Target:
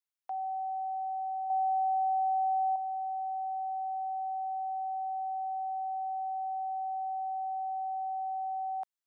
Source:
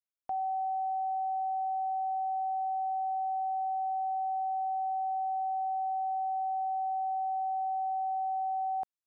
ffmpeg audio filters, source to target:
ffmpeg -i in.wav -filter_complex "[0:a]highpass=730,asettb=1/sr,asplit=3[link_01][link_02][link_03];[link_01]atrim=end=1.504[link_04];[link_02]atrim=start=1.5:end=2.76,asetpts=PTS-STARTPTS,afade=type=in:duration=0.004:curve=qsin,afade=type=out:start_time=1.256:duration=0.004:curve=qsin,acontrast=55[link_05];[link_03]atrim=start=2.756[link_06];[link_04][link_05]acrossfade=duration=0.004:curve1=hsin:curve2=qsin[link_07];[link_07][link_06]acrossfade=duration=0.004:curve1=qsin:curve2=hsin" out.wav

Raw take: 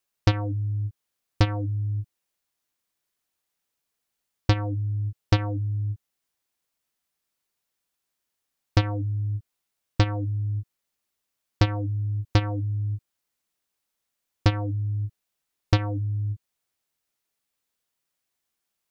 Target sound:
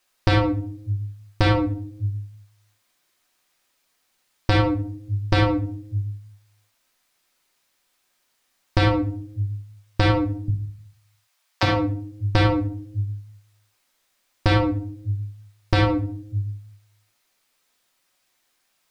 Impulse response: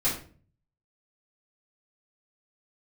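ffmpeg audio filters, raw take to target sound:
-filter_complex "[0:a]asettb=1/sr,asplit=3[link_01][link_02][link_03];[link_01]atrim=end=10.484[link_04];[link_02]atrim=start=10.48:end=11.63,asetpts=PTS-STARTPTS,afade=type=in:duration=0.004:curve=qsin,afade=type=out:start_time=1.146:duration=0.004:curve=qsin,highpass=frequency=640:width=0.5412,highpass=frequency=640:width=1.3066[link_05];[link_03]atrim=start=11.626[link_06];[link_04][link_05]acrossfade=duration=0.004:curve1=hsin:curve2=qsin[link_07];[link_07][link_06]acrossfade=duration=0.004:curve1=qsin:curve2=hsin,asplit=2[link_08][link_09];[link_09]highpass=frequency=720:poles=1,volume=6dB,asoftclip=type=tanh:threshold=-7.5dB[link_10];[link_08][link_10]amix=inputs=2:normalize=0,lowpass=frequency=3200:poles=1,volume=-6dB,asplit=2[link_11][link_12];[1:a]atrim=start_sample=2205,highshelf=frequency=3700:gain=9.5[link_13];[link_12][link_13]afir=irnorm=-1:irlink=0,volume=-11.5dB[link_14];[link_11][link_14]amix=inputs=2:normalize=0,alimiter=level_in=15.5dB:limit=-1dB:release=50:level=0:latency=1,volume=-6dB"

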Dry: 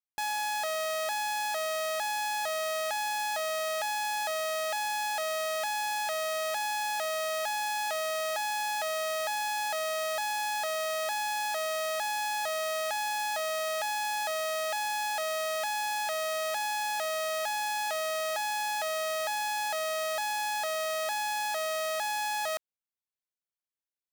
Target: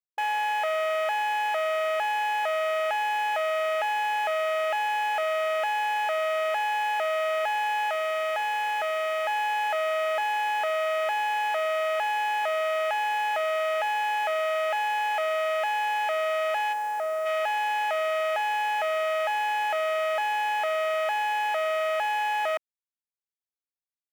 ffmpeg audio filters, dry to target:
ffmpeg -i in.wav -filter_complex "[0:a]asplit=3[link_01][link_02][link_03];[link_01]afade=type=out:start_time=7.89:duration=0.02[link_04];[link_02]asubboost=boost=2.5:cutoff=230,afade=type=in:start_time=7.89:duration=0.02,afade=type=out:start_time=9.26:duration=0.02[link_05];[link_03]afade=type=in:start_time=9.26:duration=0.02[link_06];[link_04][link_05][link_06]amix=inputs=3:normalize=0,afwtdn=0.0158,asplit=3[link_07][link_08][link_09];[link_07]afade=type=out:start_time=16.72:duration=0.02[link_10];[link_08]equalizer=frequency=2900:width=0.91:gain=-13.5,afade=type=in:start_time=16.72:duration=0.02,afade=type=out:start_time=17.25:duration=0.02[link_11];[link_09]afade=type=in:start_time=17.25:duration=0.02[link_12];[link_10][link_11][link_12]amix=inputs=3:normalize=0,volume=6dB" out.wav

